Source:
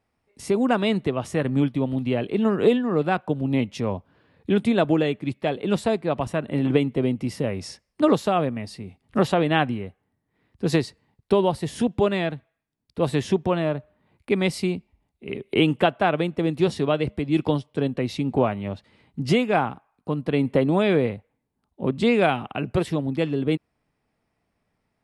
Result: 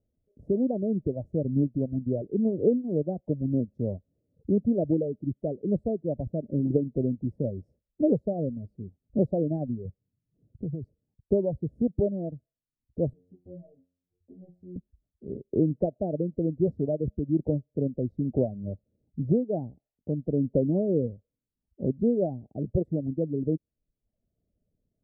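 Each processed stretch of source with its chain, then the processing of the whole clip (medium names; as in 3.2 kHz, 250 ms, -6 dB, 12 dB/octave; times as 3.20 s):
9.85–10.84 s: peaking EQ 130 Hz +10.5 dB 1.2 oct + compression, threshold -27 dBFS
13.13–14.76 s: compression 16:1, threshold -27 dBFS + inharmonic resonator 88 Hz, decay 0.55 s, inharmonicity 0.002
whole clip: elliptic low-pass 600 Hz, stop band 50 dB; bass shelf 91 Hz +11 dB; reverb removal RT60 0.71 s; trim -4 dB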